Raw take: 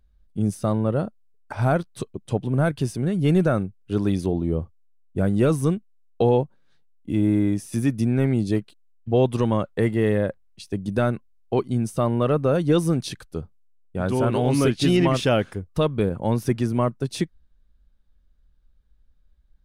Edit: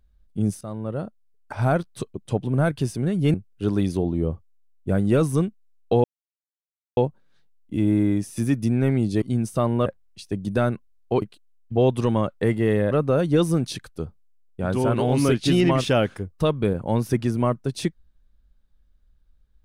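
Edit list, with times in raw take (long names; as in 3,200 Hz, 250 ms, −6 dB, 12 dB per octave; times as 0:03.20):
0:00.61–0:01.93: fade in equal-power, from −14 dB
0:03.34–0:03.63: remove
0:06.33: splice in silence 0.93 s
0:08.58–0:10.27: swap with 0:11.63–0:12.27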